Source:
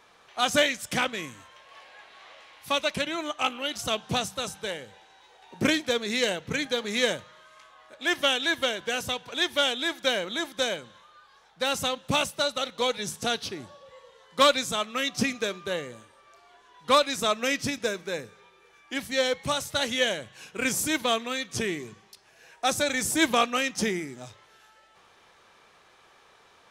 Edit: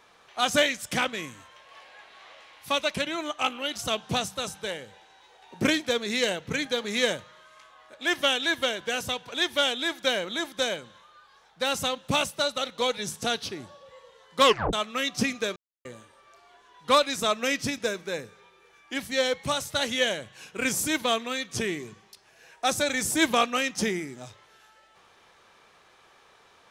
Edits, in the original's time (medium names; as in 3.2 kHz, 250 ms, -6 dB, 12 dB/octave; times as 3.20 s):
14.44 s: tape stop 0.29 s
15.56–15.85 s: mute